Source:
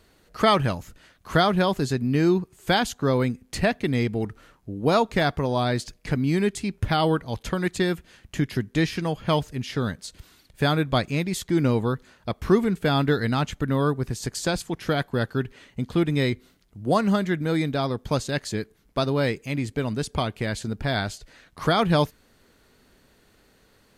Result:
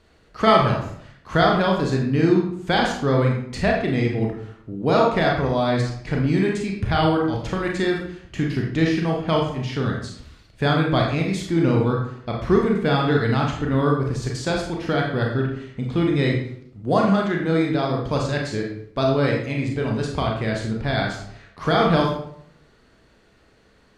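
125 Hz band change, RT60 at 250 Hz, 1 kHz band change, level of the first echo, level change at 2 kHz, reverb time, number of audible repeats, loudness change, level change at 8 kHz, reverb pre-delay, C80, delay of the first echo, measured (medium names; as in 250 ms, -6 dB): +3.5 dB, 0.70 s, +3.5 dB, no echo, +3.0 dB, 0.65 s, no echo, +3.0 dB, -4.0 dB, 28 ms, 7.0 dB, no echo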